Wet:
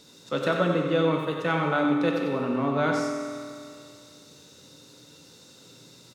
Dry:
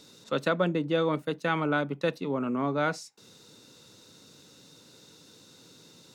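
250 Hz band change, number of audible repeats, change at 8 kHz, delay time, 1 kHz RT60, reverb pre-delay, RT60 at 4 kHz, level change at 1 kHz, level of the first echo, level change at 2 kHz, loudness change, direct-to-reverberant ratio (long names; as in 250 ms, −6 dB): +4.5 dB, 1, +3.5 dB, 92 ms, 2.3 s, 7 ms, 2.2 s, +3.5 dB, −7.0 dB, +2.5 dB, +3.0 dB, −0.5 dB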